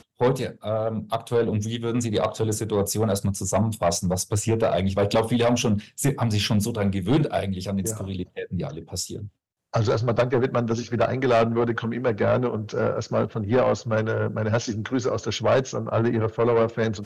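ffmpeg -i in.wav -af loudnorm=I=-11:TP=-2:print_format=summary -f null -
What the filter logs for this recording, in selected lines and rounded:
Input Integrated:    -24.2 LUFS
Input True Peak:     -14.0 dBTP
Input LRA:             2.2 LU
Input Threshold:     -34.3 LUFS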